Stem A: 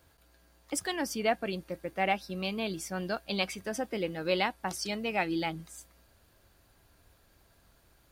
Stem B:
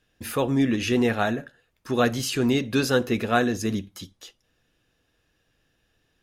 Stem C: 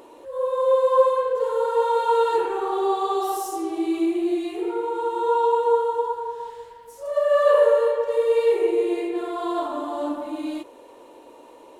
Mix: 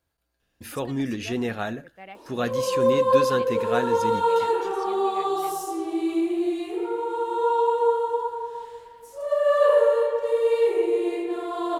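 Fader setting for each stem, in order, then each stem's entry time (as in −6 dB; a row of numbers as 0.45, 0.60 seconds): −14.5, −5.5, −1.5 decibels; 0.00, 0.40, 2.15 seconds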